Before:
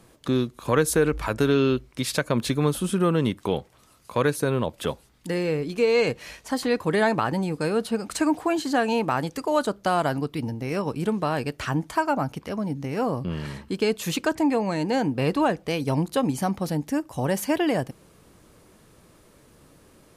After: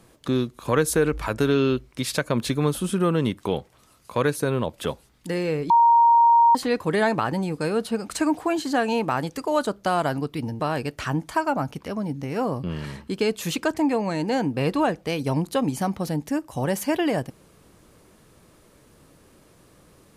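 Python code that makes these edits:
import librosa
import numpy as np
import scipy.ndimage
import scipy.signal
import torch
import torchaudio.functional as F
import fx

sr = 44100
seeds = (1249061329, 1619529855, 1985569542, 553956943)

y = fx.edit(x, sr, fx.bleep(start_s=5.7, length_s=0.85, hz=934.0, db=-12.0),
    fx.cut(start_s=10.6, length_s=0.61), tone=tone)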